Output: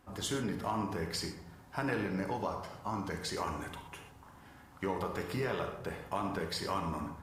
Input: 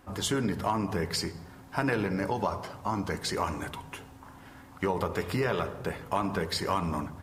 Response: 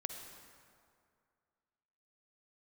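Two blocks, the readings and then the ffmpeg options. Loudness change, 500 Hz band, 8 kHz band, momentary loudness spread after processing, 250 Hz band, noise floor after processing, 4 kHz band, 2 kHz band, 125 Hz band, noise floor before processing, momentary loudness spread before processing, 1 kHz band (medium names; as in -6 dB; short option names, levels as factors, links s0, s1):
-5.5 dB, -6.0 dB, -5.5 dB, 15 LU, -5.5 dB, -57 dBFS, -5.5 dB, -5.5 dB, -6.5 dB, -51 dBFS, 16 LU, -5.5 dB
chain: -filter_complex "[0:a]bandreject=f=88.45:t=h:w=4,bandreject=f=176.9:t=h:w=4,bandreject=f=265.35:t=h:w=4,bandreject=f=353.8:t=h:w=4,bandreject=f=442.25:t=h:w=4,bandreject=f=530.7:t=h:w=4,bandreject=f=619.15:t=h:w=4,bandreject=f=707.6:t=h:w=4,bandreject=f=796.05:t=h:w=4,bandreject=f=884.5:t=h:w=4,bandreject=f=972.95:t=h:w=4,bandreject=f=1061.4:t=h:w=4,bandreject=f=1149.85:t=h:w=4,bandreject=f=1238.3:t=h:w=4,bandreject=f=1326.75:t=h:w=4,bandreject=f=1415.2:t=h:w=4,bandreject=f=1503.65:t=h:w=4,bandreject=f=1592.1:t=h:w=4,bandreject=f=1680.55:t=h:w=4,bandreject=f=1769:t=h:w=4,bandreject=f=1857.45:t=h:w=4,bandreject=f=1945.9:t=h:w=4,bandreject=f=2034.35:t=h:w=4,bandreject=f=2122.8:t=h:w=4,bandreject=f=2211.25:t=h:w=4,bandreject=f=2299.7:t=h:w=4,bandreject=f=2388.15:t=h:w=4,bandreject=f=2476.6:t=h:w=4,bandreject=f=2565.05:t=h:w=4,bandreject=f=2653.5:t=h:w=4,bandreject=f=2741.95:t=h:w=4,bandreject=f=2830.4:t=h:w=4[s0];[1:a]atrim=start_sample=2205,afade=t=out:st=0.27:d=0.01,atrim=end_sample=12348,asetrate=70560,aresample=44100[s1];[s0][s1]afir=irnorm=-1:irlink=0"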